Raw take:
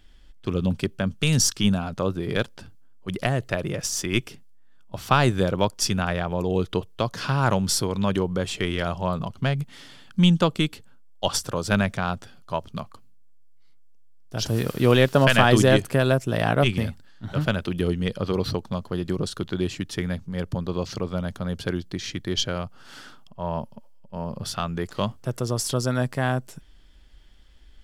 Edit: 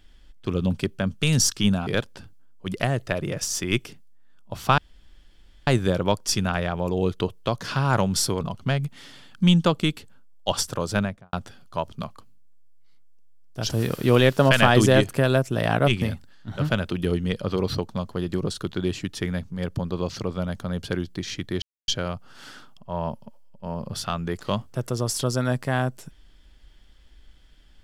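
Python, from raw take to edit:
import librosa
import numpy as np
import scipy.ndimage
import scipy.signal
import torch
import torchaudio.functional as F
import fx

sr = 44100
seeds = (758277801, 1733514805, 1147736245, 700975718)

y = fx.studio_fade_out(x, sr, start_s=11.61, length_s=0.48)
y = fx.edit(y, sr, fx.cut(start_s=1.87, length_s=0.42),
    fx.insert_room_tone(at_s=5.2, length_s=0.89),
    fx.cut(start_s=7.94, length_s=1.23),
    fx.insert_silence(at_s=22.38, length_s=0.26), tone=tone)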